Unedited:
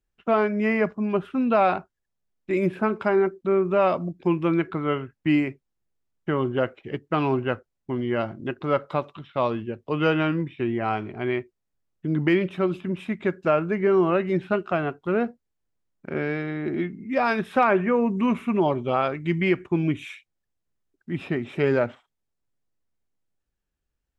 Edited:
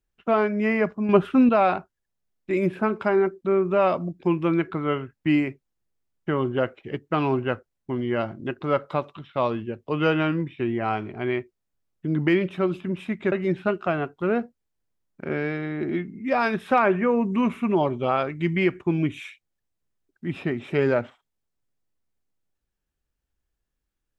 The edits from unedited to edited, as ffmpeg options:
ffmpeg -i in.wav -filter_complex "[0:a]asplit=4[link_01][link_02][link_03][link_04];[link_01]atrim=end=1.092[link_05];[link_02]atrim=start=1.088:end=1.492,asetpts=PTS-STARTPTS,volume=7dB[link_06];[link_03]atrim=start=1.488:end=13.322[link_07];[link_04]atrim=start=14.168[link_08];[link_05][link_06]acrossfade=duration=0.004:curve1=hsin:curve2=hsin[link_09];[link_09][link_07]acrossfade=duration=0.004:curve1=hsin:curve2=hsin[link_10];[link_10][link_08]acrossfade=duration=0.004:curve1=hsin:curve2=hsin" out.wav

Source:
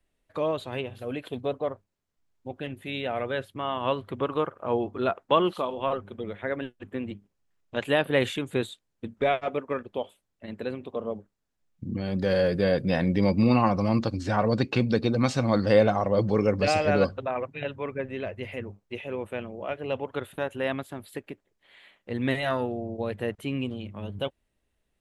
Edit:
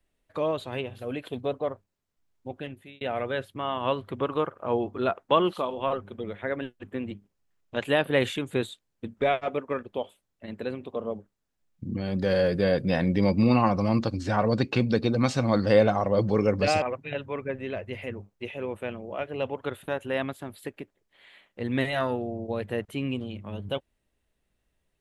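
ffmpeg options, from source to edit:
ffmpeg -i in.wav -filter_complex "[0:a]asplit=3[link_01][link_02][link_03];[link_01]atrim=end=3.01,asetpts=PTS-STARTPTS,afade=type=out:start_time=2.55:duration=0.46[link_04];[link_02]atrim=start=3.01:end=16.822,asetpts=PTS-STARTPTS,afade=type=in:duration=0.004:curve=hsin[link_05];[link_03]atrim=start=17.318[link_06];[link_04][link_05]concat=n=2:v=0:a=1[link_07];[link_07][link_06]acrossfade=duration=0.004:curve1=hsin:curve2=hsin" out.wav

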